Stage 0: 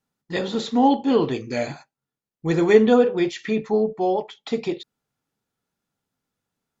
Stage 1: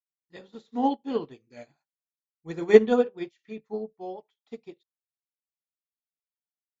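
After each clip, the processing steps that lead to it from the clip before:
expander for the loud parts 2.5 to 1, over −32 dBFS
level +1.5 dB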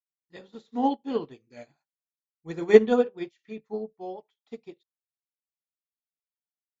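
no processing that can be heard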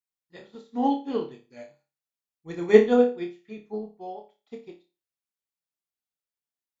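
flutter between parallel walls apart 4.9 metres, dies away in 0.31 s
level −1 dB

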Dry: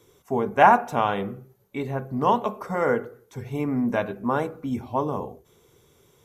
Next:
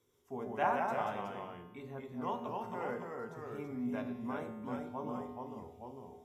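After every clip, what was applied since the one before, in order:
delay with pitch and tempo change per echo 130 ms, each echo −1 semitone, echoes 2
tuned comb filter 82 Hz, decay 1.2 s, harmonics odd, mix 80%
hum removal 47.34 Hz, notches 20
level −4.5 dB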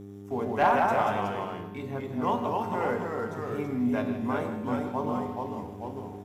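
slap from a distant wall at 27 metres, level −12 dB
hum with harmonics 100 Hz, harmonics 4, −53 dBFS −1 dB per octave
leveller curve on the samples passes 1
level +6.5 dB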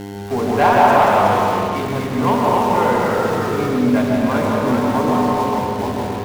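in parallel at −9 dB: log-companded quantiser 2 bits
on the sum: convolution reverb RT60 1.8 s, pre-delay 119 ms, DRR 0 dB
level +6.5 dB

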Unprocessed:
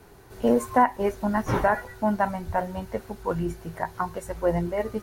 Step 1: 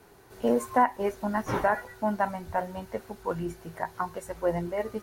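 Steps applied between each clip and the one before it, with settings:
low-shelf EQ 130 Hz −9 dB
level −2.5 dB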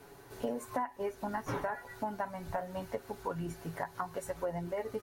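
comb filter 7.1 ms, depth 45%
downward compressor 6 to 1, threshold −33 dBFS, peak gain reduction 16.5 dB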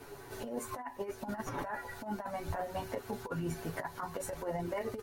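multi-voice chorus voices 6, 0.58 Hz, delay 11 ms, depth 3.2 ms
compressor whose output falls as the input rises −41 dBFS, ratio −0.5
level +5 dB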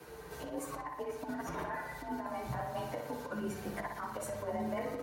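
frequency shifter +44 Hz
feedback echo with a low-pass in the loop 60 ms, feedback 65%, low-pass 4,700 Hz, level −4.5 dB
level −2 dB

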